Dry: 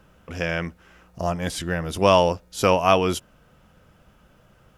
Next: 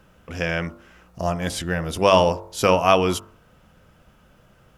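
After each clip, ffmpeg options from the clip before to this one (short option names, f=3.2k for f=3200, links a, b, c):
-af "bandreject=f=48.81:t=h:w=4,bandreject=f=97.62:t=h:w=4,bandreject=f=146.43:t=h:w=4,bandreject=f=195.24:t=h:w=4,bandreject=f=244.05:t=h:w=4,bandreject=f=292.86:t=h:w=4,bandreject=f=341.67:t=h:w=4,bandreject=f=390.48:t=h:w=4,bandreject=f=439.29:t=h:w=4,bandreject=f=488.1:t=h:w=4,bandreject=f=536.91:t=h:w=4,bandreject=f=585.72:t=h:w=4,bandreject=f=634.53:t=h:w=4,bandreject=f=683.34:t=h:w=4,bandreject=f=732.15:t=h:w=4,bandreject=f=780.96:t=h:w=4,bandreject=f=829.77:t=h:w=4,bandreject=f=878.58:t=h:w=4,bandreject=f=927.39:t=h:w=4,bandreject=f=976.2:t=h:w=4,bandreject=f=1.02501k:t=h:w=4,bandreject=f=1.07382k:t=h:w=4,bandreject=f=1.12263k:t=h:w=4,bandreject=f=1.17144k:t=h:w=4,bandreject=f=1.22025k:t=h:w=4,bandreject=f=1.26906k:t=h:w=4,bandreject=f=1.31787k:t=h:w=4,bandreject=f=1.36668k:t=h:w=4,bandreject=f=1.41549k:t=h:w=4,volume=1.5dB"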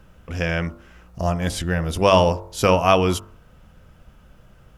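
-af "lowshelf=f=91:g=12"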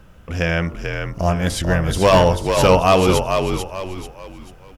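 -filter_complex "[0:a]asoftclip=type=hard:threshold=-10.5dB,asplit=5[a][b][c][d][e];[b]adelay=440,afreqshift=-46,volume=-5.5dB[f];[c]adelay=880,afreqshift=-92,volume=-14.4dB[g];[d]adelay=1320,afreqshift=-138,volume=-23.2dB[h];[e]adelay=1760,afreqshift=-184,volume=-32.1dB[i];[a][f][g][h][i]amix=inputs=5:normalize=0,volume=3.5dB"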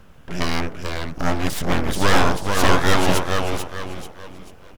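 -af "aeval=exprs='abs(val(0))':c=same"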